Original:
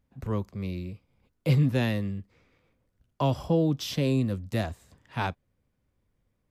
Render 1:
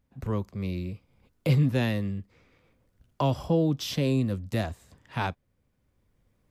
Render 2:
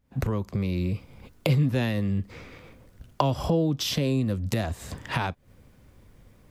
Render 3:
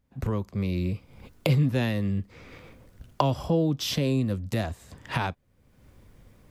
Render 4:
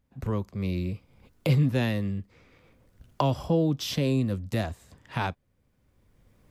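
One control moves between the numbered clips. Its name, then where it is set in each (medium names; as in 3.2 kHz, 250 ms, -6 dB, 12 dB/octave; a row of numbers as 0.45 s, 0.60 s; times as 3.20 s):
recorder AGC, rising by: 5.4 dB/s, 87 dB/s, 34 dB/s, 13 dB/s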